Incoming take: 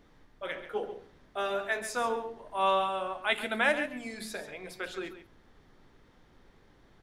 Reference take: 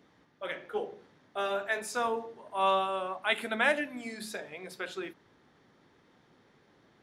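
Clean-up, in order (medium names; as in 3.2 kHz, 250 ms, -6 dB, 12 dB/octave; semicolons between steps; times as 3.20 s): expander -53 dBFS, range -21 dB; inverse comb 137 ms -11.5 dB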